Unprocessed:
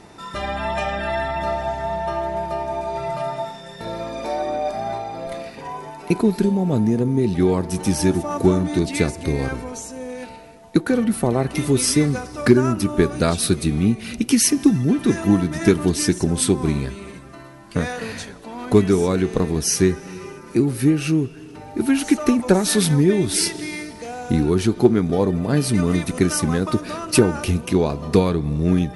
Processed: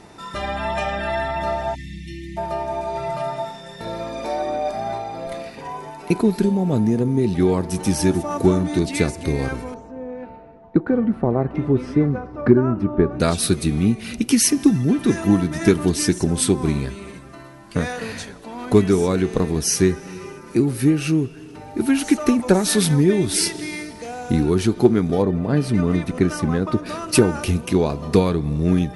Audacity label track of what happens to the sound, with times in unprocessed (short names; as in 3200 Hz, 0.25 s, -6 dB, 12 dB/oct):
1.750000	2.380000	spectral delete 360–1800 Hz
9.740000	13.200000	LPF 1200 Hz
25.220000	26.860000	LPF 2100 Hz 6 dB/oct